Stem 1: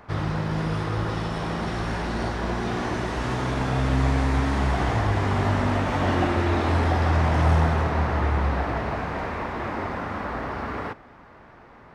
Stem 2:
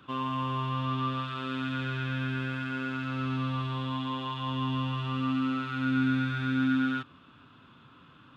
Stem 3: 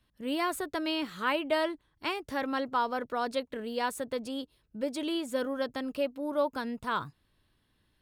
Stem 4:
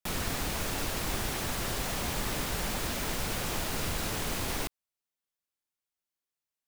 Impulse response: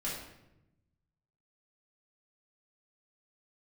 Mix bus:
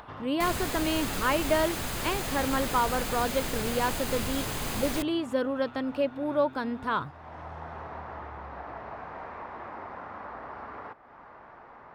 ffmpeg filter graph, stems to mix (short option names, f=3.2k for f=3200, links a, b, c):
-filter_complex "[0:a]acompressor=threshold=-29dB:ratio=2,lowpass=6.9k,equalizer=f=930:w=0.5:g=12.5,volume=-18.5dB[a];[1:a]alimiter=level_in=5dB:limit=-24dB:level=0:latency=1,volume=-5dB,volume=-11.5dB[b];[2:a]lowpass=f=2.7k:p=1,acontrast=81,volume=-3.5dB,asplit=2[c][d];[3:a]bandreject=f=5.6k:w=11,adelay=350,volume=0dB[e];[d]apad=whole_len=526581[f];[a][f]sidechaincompress=threshold=-34dB:ratio=8:attack=10:release=736[g];[g][b][c][e]amix=inputs=4:normalize=0,acompressor=mode=upward:threshold=-40dB:ratio=2.5"